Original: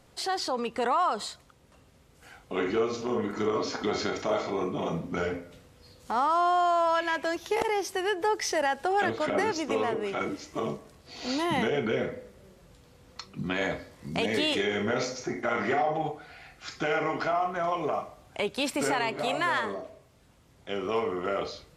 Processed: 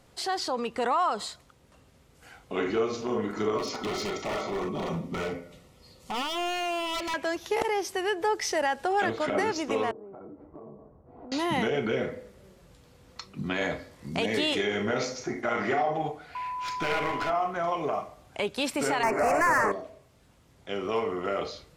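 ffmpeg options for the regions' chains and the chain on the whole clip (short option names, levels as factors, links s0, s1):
-filter_complex "[0:a]asettb=1/sr,asplit=3[s0][s1][s2];[s0]atrim=end=3.584[s3];[s1]atrim=start=3.58:end=7.14,asetpts=PTS-STARTPTS,afade=t=in:d=0.004:c=qsin,afade=t=out:st=3.556:d=0.004:c=qsin,aecho=1:1:5.3:0.32,atrim=end_sample=156996,aeval=exprs='0.0531*(abs(mod(val(0)/0.0531+3,4)-2)-1)':c=same,asuperstop=centerf=1600:order=12:qfactor=6.9[s4];[s2]atrim=start=7.136[s5];[s3][s4]acrossfade=d=0.004:c1=hsin:c2=qsin[s6];[s6][s5]acrossfade=d=0.004:c1=qsin:c2=hsin,asettb=1/sr,asplit=3[s7][s8][s9];[s7]atrim=end=9.914[s10];[s8]atrim=start=9.91:end=11.32,asetpts=PTS-STARTPTS,afade=t=in:d=0.004:c=qsin,afade=t=out:st=1.406:d=0.004:c=qsin,lowpass=f=1000:w=0.5412,lowpass=f=1000:w=1.3066,acompressor=threshold=0.00891:ratio=12:attack=3.2:release=140:knee=1:detection=peak[s11];[s9]atrim=start=11.316[s12];[s10][s11]acrossfade=d=0.004:c1=hsin:c2=qsin[s13];[s13][s12]acrossfade=d=0.004:c1=qsin:c2=hsin,asettb=1/sr,asplit=3[s14][s15][s16];[s14]atrim=end=16.354[s17];[s15]atrim=start=16.35:end=17.3,asetpts=PTS-STARTPTS,afade=t=in:d=0.004:c=qsin,afade=t=out:st=0.946:d=0.004:c=qsin,equalizer=f=2500:w=2.3:g=7,aeval=exprs='val(0)+0.0282*sin(2*PI*1000*n/s)':c=same,aeval=exprs='clip(val(0),-1,0.0316)':c=same[s18];[s16]atrim=start=17.296[s19];[s17][s18]acrossfade=d=0.004:c1=hsin:c2=qsin[s20];[s20][s19]acrossfade=d=0.004:c1=qsin:c2=hsin,asettb=1/sr,asplit=3[s21][s22][s23];[s21]atrim=end=19.034[s24];[s22]atrim=start=19.03:end=19.72,asetpts=PTS-STARTPTS,afade=t=in:d=0.004:c=qsin,afade=t=out:st=0.686:d=0.004:c=qsin,acrossover=split=3800[s25][s26];[s26]acompressor=threshold=0.00355:ratio=4:attack=1:release=60[s27];[s25][s27]amix=inputs=2:normalize=0,asplit=2[s28][s29];[s29]highpass=f=720:p=1,volume=12.6,asoftclip=type=tanh:threshold=0.158[s30];[s28][s30]amix=inputs=2:normalize=0,lowpass=f=7800:p=1,volume=0.501,asuperstop=centerf=3500:order=4:qfactor=0.87[s31];[s23]atrim=start=19.716[s32];[s24][s31]acrossfade=d=0.004:c1=hsin:c2=qsin[s33];[s33][s32]acrossfade=d=0.004:c1=qsin:c2=hsin"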